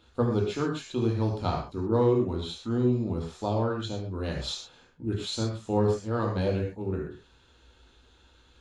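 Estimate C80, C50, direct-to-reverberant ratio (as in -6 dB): 7.5 dB, 4.5 dB, -1.0 dB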